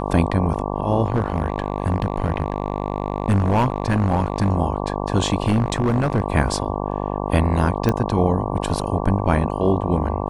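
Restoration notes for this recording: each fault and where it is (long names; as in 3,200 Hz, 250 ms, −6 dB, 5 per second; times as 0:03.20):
mains buzz 50 Hz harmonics 23 −25 dBFS
0:01.06–0:04.51: clipping −13 dBFS
0:05.46–0:06.22: clipping −13.5 dBFS
0:07.89: click −7 dBFS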